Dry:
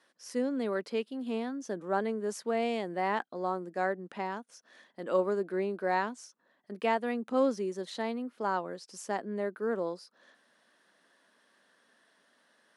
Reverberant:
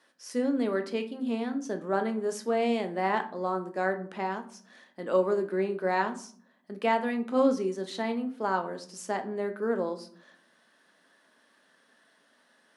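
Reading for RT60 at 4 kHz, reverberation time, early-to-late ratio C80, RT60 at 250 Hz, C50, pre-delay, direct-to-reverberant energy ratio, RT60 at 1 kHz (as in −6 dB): 0.30 s, 0.50 s, 18.0 dB, 0.90 s, 14.0 dB, 3 ms, 6.0 dB, 0.45 s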